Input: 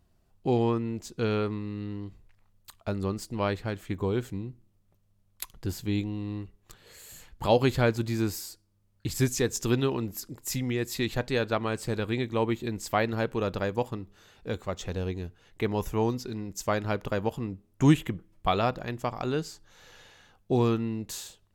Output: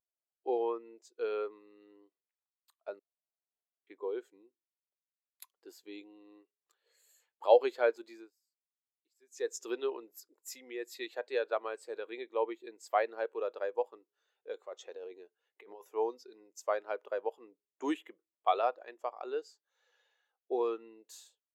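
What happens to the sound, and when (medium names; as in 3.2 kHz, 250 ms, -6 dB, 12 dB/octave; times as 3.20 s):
2.99–3.87 s: room tone
8.09–9.49 s: dip -19.5 dB, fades 0.22 s
14.54–15.82 s: compressor with a negative ratio -31 dBFS, ratio -0.5
whole clip: high-pass 410 Hz 24 dB/octave; spectral contrast expander 1.5:1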